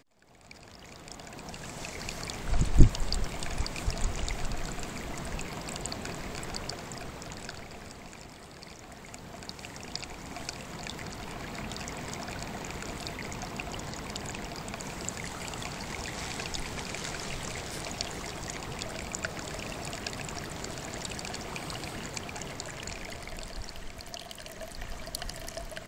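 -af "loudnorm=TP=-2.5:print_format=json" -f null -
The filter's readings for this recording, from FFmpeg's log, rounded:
"input_i" : "-37.1",
"input_tp" : "-1.2",
"input_lra" : "8.8",
"input_thresh" : "-47.2",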